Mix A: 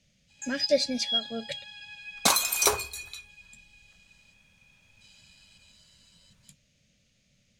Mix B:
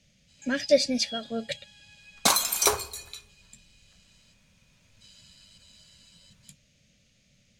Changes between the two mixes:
speech +3.5 dB
first sound −10.5 dB
second sound: send +7.5 dB

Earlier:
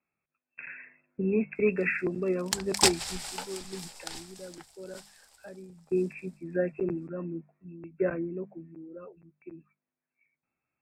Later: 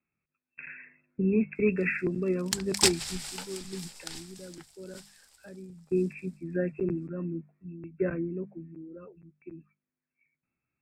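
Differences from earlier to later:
speech: add low-shelf EQ 270 Hz +6 dB
master: add parametric band 730 Hz −7.5 dB 1.3 octaves

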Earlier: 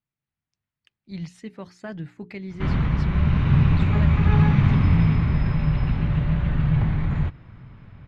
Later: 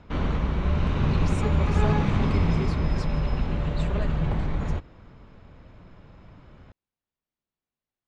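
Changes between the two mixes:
background: entry −2.50 s
master: add octave-band graphic EQ 125/500/2,000/8,000 Hz −11/+6/−5/+11 dB

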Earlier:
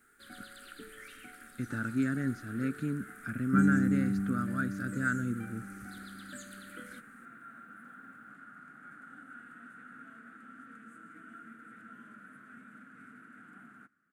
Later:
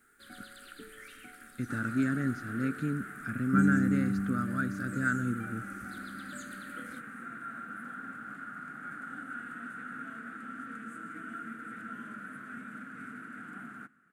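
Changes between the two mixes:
second sound +8.0 dB
reverb: on, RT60 2.4 s

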